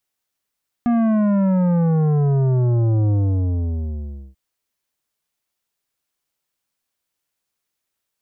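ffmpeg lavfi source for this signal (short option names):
-f lavfi -i "aevalsrc='0.168*clip((3.49-t)/1.24,0,1)*tanh(3.55*sin(2*PI*240*3.49/log(65/240)*(exp(log(65/240)*t/3.49)-1)))/tanh(3.55)':d=3.49:s=44100"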